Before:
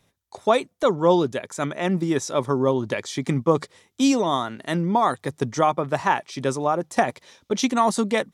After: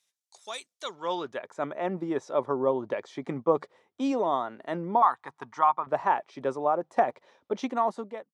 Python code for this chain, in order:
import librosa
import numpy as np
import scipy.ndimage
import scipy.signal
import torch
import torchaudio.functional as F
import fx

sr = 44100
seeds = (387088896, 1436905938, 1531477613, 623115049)

y = fx.fade_out_tail(x, sr, length_s=0.69)
y = fx.filter_sweep_bandpass(y, sr, from_hz=6800.0, to_hz=690.0, start_s=0.71, end_s=1.52, q=0.95)
y = fx.low_shelf_res(y, sr, hz=720.0, db=-9.5, q=3.0, at=(5.02, 5.87))
y = y * 10.0 ** (-2.0 / 20.0)